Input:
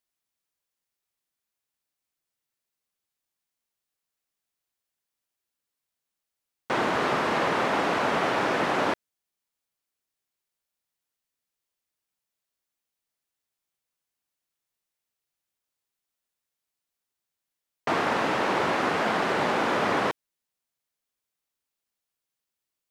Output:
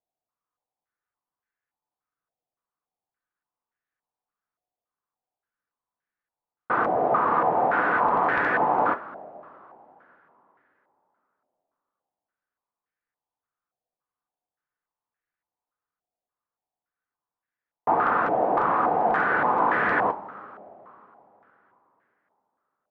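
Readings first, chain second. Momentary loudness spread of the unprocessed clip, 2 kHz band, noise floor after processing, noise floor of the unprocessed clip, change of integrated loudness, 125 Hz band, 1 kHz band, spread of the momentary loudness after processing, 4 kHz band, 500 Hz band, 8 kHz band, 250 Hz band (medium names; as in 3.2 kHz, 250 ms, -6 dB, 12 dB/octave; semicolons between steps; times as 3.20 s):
5 LU, +2.0 dB, under -85 dBFS, under -85 dBFS, +2.5 dB, -2.5 dB, +5.0 dB, 8 LU, under -15 dB, +1.0 dB, under -25 dB, -2.0 dB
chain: integer overflow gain 14 dB; two-slope reverb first 0.21 s, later 3.6 s, from -20 dB, DRR 6 dB; step-sequenced low-pass 3.5 Hz 700–1700 Hz; trim -3.5 dB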